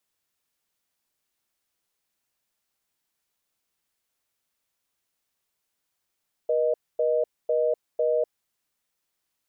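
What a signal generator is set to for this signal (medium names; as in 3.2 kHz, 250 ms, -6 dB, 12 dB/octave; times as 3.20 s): call progress tone reorder tone, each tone -23 dBFS 1.80 s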